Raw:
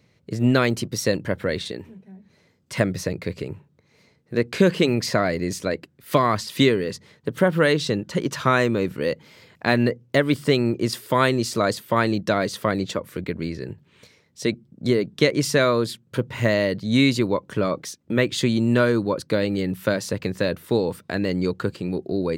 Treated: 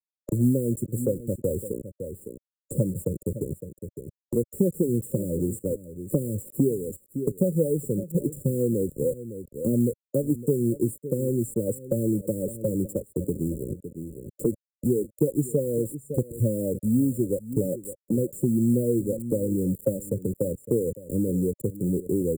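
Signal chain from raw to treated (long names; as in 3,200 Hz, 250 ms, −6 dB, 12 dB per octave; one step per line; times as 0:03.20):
spectral dynamics exaggerated over time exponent 1.5
in parallel at +2.5 dB: downward compressor 12 to 1, threshold −30 dBFS, peak gain reduction 17.5 dB
on the sum: rotating-speaker cabinet horn 1 Hz
bit reduction 6 bits
linear-phase brick-wall band-stop 580–7,100 Hz
on a send: single-tap delay 559 ms −17.5 dB
on the sum: multiband upward and downward compressor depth 70%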